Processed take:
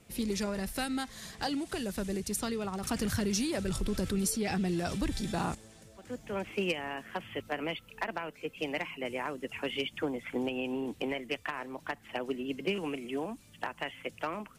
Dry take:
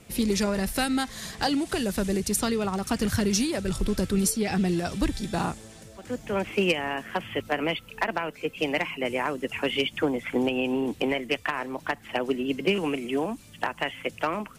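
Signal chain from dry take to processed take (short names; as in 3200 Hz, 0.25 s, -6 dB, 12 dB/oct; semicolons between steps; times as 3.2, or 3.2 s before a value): 2.83–5.55 fast leveller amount 50%; gain -8 dB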